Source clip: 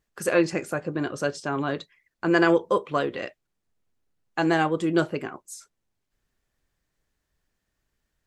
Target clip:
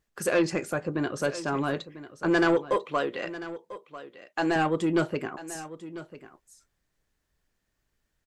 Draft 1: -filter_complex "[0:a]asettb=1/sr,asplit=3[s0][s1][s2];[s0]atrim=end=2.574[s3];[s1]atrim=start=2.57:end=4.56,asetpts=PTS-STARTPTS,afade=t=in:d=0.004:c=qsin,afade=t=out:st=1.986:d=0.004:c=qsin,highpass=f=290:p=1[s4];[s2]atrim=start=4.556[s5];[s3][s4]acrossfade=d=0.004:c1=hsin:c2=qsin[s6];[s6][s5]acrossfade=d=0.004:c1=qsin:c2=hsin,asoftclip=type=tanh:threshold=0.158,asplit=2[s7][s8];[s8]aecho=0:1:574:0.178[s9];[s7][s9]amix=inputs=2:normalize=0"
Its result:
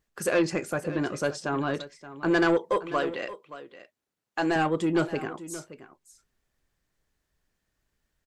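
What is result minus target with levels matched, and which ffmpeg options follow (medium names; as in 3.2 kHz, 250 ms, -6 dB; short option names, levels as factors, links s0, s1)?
echo 421 ms early
-filter_complex "[0:a]asettb=1/sr,asplit=3[s0][s1][s2];[s0]atrim=end=2.574[s3];[s1]atrim=start=2.57:end=4.56,asetpts=PTS-STARTPTS,afade=t=in:d=0.004:c=qsin,afade=t=out:st=1.986:d=0.004:c=qsin,highpass=f=290:p=1[s4];[s2]atrim=start=4.556[s5];[s3][s4]acrossfade=d=0.004:c1=hsin:c2=qsin[s6];[s6][s5]acrossfade=d=0.004:c1=qsin:c2=hsin,asoftclip=type=tanh:threshold=0.158,asplit=2[s7][s8];[s8]aecho=0:1:995:0.178[s9];[s7][s9]amix=inputs=2:normalize=0"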